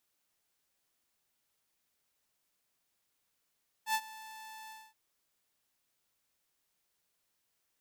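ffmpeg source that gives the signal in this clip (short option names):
-f lavfi -i "aevalsrc='0.0596*(2*mod(878*t,1)-1)':d=1.076:s=44100,afade=t=in:d=0.082,afade=t=out:st=0.082:d=0.06:silence=0.106,afade=t=out:st=0.84:d=0.236"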